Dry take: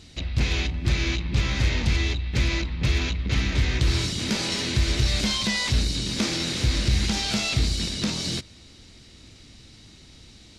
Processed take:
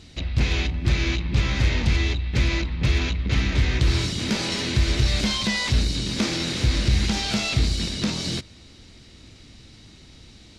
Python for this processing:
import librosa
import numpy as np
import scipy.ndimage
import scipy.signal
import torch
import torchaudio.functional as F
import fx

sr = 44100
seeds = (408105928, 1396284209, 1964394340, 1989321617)

y = fx.high_shelf(x, sr, hz=4700.0, db=-5.0)
y = F.gain(torch.from_numpy(y), 2.0).numpy()